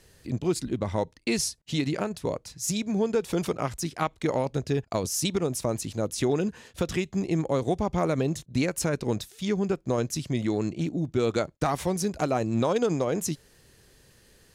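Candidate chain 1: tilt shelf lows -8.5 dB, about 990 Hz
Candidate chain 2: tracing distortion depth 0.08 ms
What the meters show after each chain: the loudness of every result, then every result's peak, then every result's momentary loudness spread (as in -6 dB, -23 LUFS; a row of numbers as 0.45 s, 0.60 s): -28.0 LUFS, -28.5 LUFS; -7.0 dBFS, -14.0 dBFS; 11 LU, 4 LU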